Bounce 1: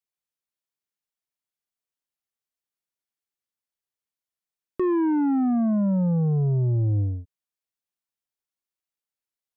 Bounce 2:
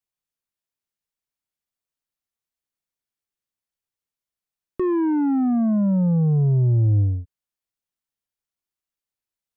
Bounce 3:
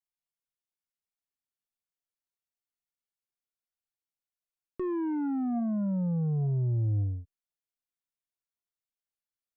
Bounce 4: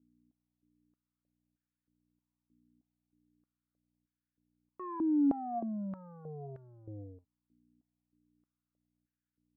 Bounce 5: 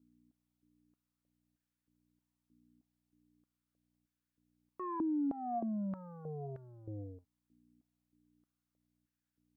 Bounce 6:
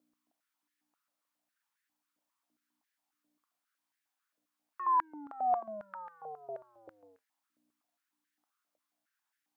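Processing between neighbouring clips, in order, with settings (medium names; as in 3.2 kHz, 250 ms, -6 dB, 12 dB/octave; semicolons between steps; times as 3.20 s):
bass shelf 150 Hz +7.5 dB
feedback comb 710 Hz, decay 0.25 s, mix 70%
hum 60 Hz, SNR 29 dB; step-sequenced band-pass 3.2 Hz 270–1600 Hz; trim +5 dB
compression 6:1, threshold -34 dBFS, peak gain reduction 9 dB; trim +1.5 dB
step-sequenced high-pass 7.4 Hz 600–1700 Hz; trim +3.5 dB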